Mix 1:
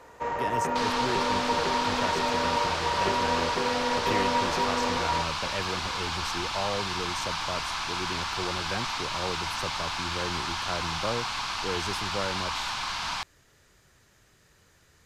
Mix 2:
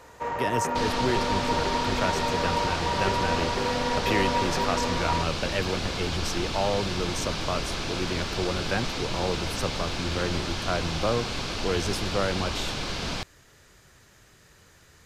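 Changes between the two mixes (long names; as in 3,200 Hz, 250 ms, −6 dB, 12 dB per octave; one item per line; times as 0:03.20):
speech +5.5 dB
second sound: add low shelf with overshoot 670 Hz +12 dB, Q 3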